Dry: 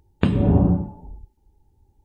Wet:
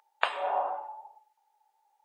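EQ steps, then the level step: steep high-pass 710 Hz 36 dB/oct; high shelf 2700 Hz -10 dB; +7.5 dB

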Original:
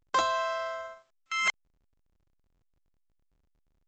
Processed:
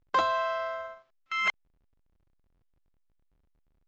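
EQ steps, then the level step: air absorption 180 m; +2.0 dB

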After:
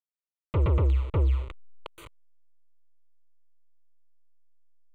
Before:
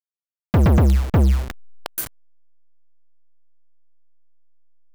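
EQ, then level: air absorption 120 m; fixed phaser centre 1100 Hz, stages 8; -6.0 dB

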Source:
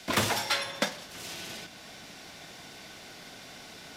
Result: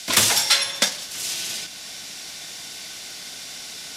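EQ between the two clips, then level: LPF 11000 Hz 12 dB/oct; high shelf 2000 Hz +11 dB; high shelf 4900 Hz +9.5 dB; 0.0 dB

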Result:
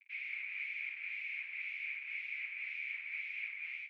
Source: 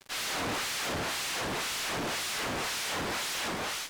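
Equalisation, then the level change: Butterworth band-pass 2300 Hz, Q 6.6; +3.0 dB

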